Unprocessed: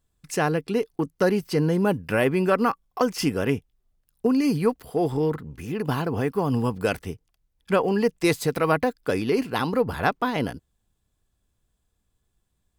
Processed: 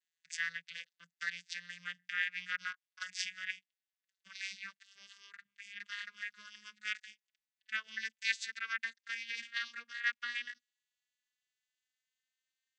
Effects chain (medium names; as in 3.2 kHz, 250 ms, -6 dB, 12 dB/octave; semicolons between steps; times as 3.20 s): vocoder on a note that slides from E3, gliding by +8 st; elliptic high-pass 1.7 kHz, stop band 50 dB; trim +8 dB